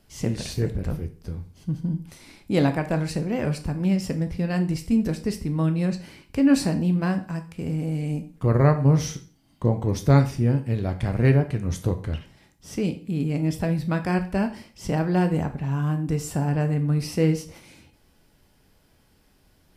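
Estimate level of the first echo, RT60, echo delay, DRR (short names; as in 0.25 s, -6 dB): none, 0.40 s, none, 7.0 dB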